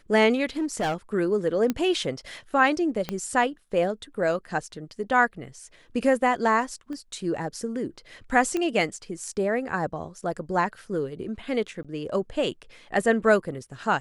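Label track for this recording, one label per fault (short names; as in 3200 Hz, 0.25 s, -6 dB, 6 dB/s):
0.590000	0.950000	clipped -22.5 dBFS
1.700000	1.700000	pop -12 dBFS
3.090000	3.090000	pop -14 dBFS
6.930000	6.930000	pop -27 dBFS
8.570000	8.570000	pop -15 dBFS
11.830000	11.850000	gap 16 ms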